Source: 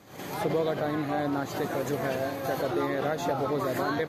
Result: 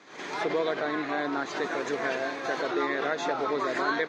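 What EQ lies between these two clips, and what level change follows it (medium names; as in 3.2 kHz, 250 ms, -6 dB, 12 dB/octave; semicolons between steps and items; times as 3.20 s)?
cabinet simulation 470–5500 Hz, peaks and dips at 550 Hz -9 dB, 780 Hz -8 dB, 1.2 kHz -3 dB, 3 kHz -5 dB, 4.6 kHz -5 dB; +7.0 dB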